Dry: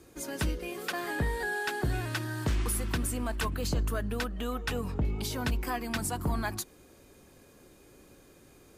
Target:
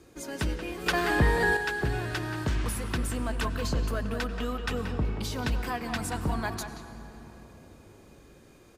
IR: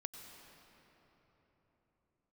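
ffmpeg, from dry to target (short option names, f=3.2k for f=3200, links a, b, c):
-filter_complex "[0:a]asplit=2[a][b];[b]adelay=180,highpass=300,lowpass=3.4k,asoftclip=type=hard:threshold=-29.5dB,volume=-6dB[c];[a][c]amix=inputs=2:normalize=0,asplit=2[d][e];[1:a]atrim=start_sample=2205,lowpass=8.7k[f];[e][f]afir=irnorm=-1:irlink=0,volume=2.5dB[g];[d][g]amix=inputs=2:normalize=0,asettb=1/sr,asplit=3[h][i][j];[h]atrim=end=0.864[k];[i]atrim=start=0.86:end=1.57,asetpts=PTS-STARTPTS,afade=t=in:d=0.004:c=qsin,afade=t=out:st=0.706:d=0.004:c=qsin,acontrast=71[l];[j]atrim=start=1.566[m];[k][l]acrossfade=d=0.004:c1=hsin:c2=qsin[n];[n][m]acrossfade=d=0.004:c1=qsin:c2=hsin,volume=-4.5dB"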